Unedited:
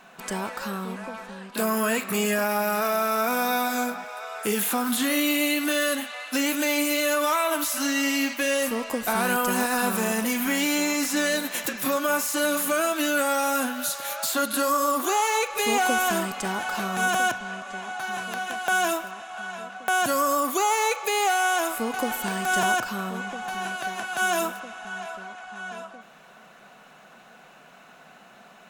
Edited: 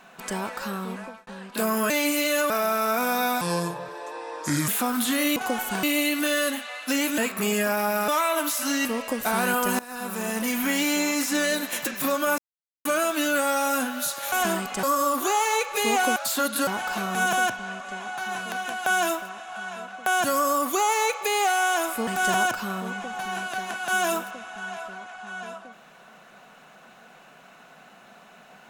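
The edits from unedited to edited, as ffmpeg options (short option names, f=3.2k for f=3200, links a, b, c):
-filter_complex "[0:a]asplit=19[a][b][c][d][e][f][g][h][i][j][k][l][m][n][o][p][q][r][s];[a]atrim=end=1.27,asetpts=PTS-STARTPTS,afade=t=out:st=0.99:d=0.28[t];[b]atrim=start=1.27:end=1.902,asetpts=PTS-STARTPTS,afade=t=in:d=0.004:c=hsin[u];[c]atrim=start=6.628:end=7.232[v];[d]atrim=start=2.798:end=3.714[w];[e]atrim=start=3.71:end=4.6,asetpts=PTS-STARTPTS,asetrate=30870,aresample=44100[x];[f]atrim=start=4.596:end=5.282[y];[g]atrim=start=21.888:end=22.362[z];[h]atrim=start=5.278:end=6.632[aa];[i]atrim=start=1.898:end=2.802[ab];[j]atrim=start=7.228:end=8.002[ac];[k]atrim=start=8.668:end=9.61,asetpts=PTS-STARTPTS,afade=t=out:st=0.938:d=0.004:c=hsin:silence=0.0944061[ad];[l]atrim=start=9.61:end=12.2,asetpts=PTS-STARTPTS,afade=t=in:d=0.77:silence=0.0944061,afade=t=out:st=2.586:d=0.004:c=hsin[ae];[m]atrim=start=12.2:end=12.67,asetpts=PTS-STARTPTS,volume=0[af];[n]atrim=start=12.67:end=14.142,asetpts=PTS-STARTPTS,afade=t=in:d=0.004:c=hsin[ag];[o]atrim=start=15.978:end=16.492[ah];[p]atrim=start=14.648:end=15.982[ai];[q]atrim=start=14.138:end=14.652[aj];[r]atrim=start=16.488:end=21.892[ak];[s]atrim=start=22.358[al];[t][u]concat=n=2:v=0:a=1[am];[am][v]acrossfade=d=0.004:c1=hsin:c2=hsin[an];[an][w]acrossfade=d=0.004:c1=hsin:c2=hsin[ao];[ao][x]acrossfade=d=0.004:c1=hsin:c2=hsin[ap];[ap][y]acrossfade=d=0.004:c1=hsin:c2=hsin[aq];[aq][z]acrossfade=d=0.004:c1=hsin:c2=hsin[ar];[ar][aa]acrossfade=d=0.004:c1=hsin:c2=hsin[as];[as][ab]acrossfade=d=0.004:c1=hsin:c2=hsin[at];[at][ac]acrossfade=d=0.004:c1=hsin:c2=hsin[au];[ad][ae][af][ag]concat=n=4:v=0:a=1[av];[au][av]acrossfade=d=0.004:c1=hsin:c2=hsin[aw];[aw][ah]acrossfade=d=0.004:c1=hsin:c2=hsin[ax];[ax][ai]acrossfade=d=0.004:c1=hsin:c2=hsin[ay];[ay][aj]acrossfade=d=0.004:c1=hsin:c2=hsin[az];[az][ak]acrossfade=d=0.004:c1=hsin:c2=hsin[ba];[ba][al]acrossfade=d=0.004:c1=hsin:c2=hsin"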